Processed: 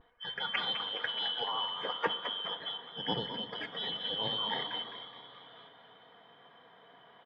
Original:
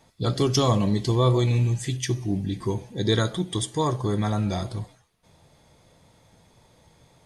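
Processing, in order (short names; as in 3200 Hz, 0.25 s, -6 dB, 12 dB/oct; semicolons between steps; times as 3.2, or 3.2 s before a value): four-band scrambler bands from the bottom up 2413; HPF 130 Hz 24 dB/oct; bell 270 Hz -8 dB 1.8 oct; frequency-shifting echo 0.211 s, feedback 60%, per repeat +89 Hz, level -10.5 dB; in parallel at -3 dB: level quantiser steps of 10 dB; on the sum: vibrato 0.5 Hz 29 cents; AGC gain up to 8.5 dB; LPF 1600 Hz 24 dB/oct; comb 4.2 ms, depth 38%; on a send at -14 dB: tilt -1.5 dB/oct + reverb RT60 4.8 s, pre-delay 43 ms; on the sum: gain +1.5 dB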